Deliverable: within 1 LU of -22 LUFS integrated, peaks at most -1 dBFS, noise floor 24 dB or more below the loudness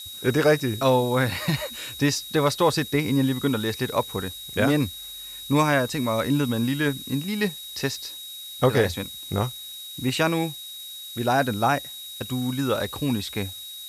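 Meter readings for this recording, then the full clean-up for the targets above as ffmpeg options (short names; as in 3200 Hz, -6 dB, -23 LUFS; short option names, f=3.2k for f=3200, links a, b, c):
steady tone 3800 Hz; tone level -37 dBFS; noise floor -39 dBFS; noise floor target -49 dBFS; loudness -24.5 LUFS; peak -7.5 dBFS; loudness target -22.0 LUFS
-> -af "bandreject=f=3.8k:w=30"
-af "afftdn=nr=10:nf=-39"
-af "volume=2.5dB"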